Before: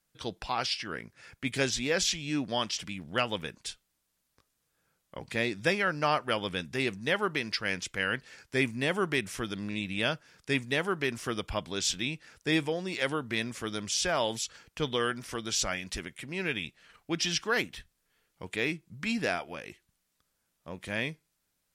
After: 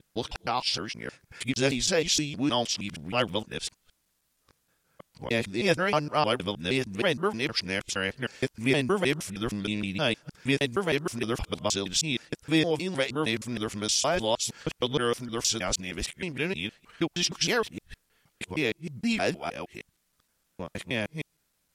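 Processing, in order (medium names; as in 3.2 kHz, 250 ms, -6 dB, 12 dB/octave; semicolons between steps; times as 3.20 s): time reversed locally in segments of 156 ms; dynamic bell 1.7 kHz, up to -6 dB, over -45 dBFS, Q 1.3; trim +4.5 dB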